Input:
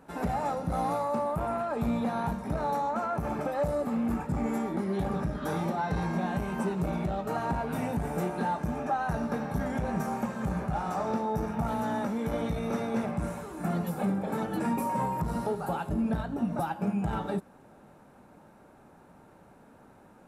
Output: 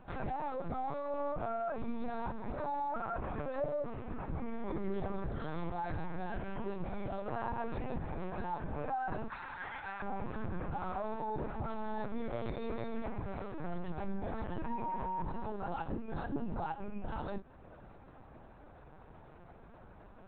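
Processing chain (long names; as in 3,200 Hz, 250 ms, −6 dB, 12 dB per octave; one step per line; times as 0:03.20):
0:09.28–0:10.02: high-pass filter 990 Hz 24 dB per octave
in parallel at +1 dB: downward compressor 20 to 1, threshold −39 dBFS, peak gain reduction 15.5 dB
on the sum: brickwall limiter −23.5 dBFS, peak gain reduction 5.5 dB
flanger 0.2 Hz, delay 4.9 ms, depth 3.8 ms, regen −43%
linear-prediction vocoder at 8 kHz pitch kept
level −2 dB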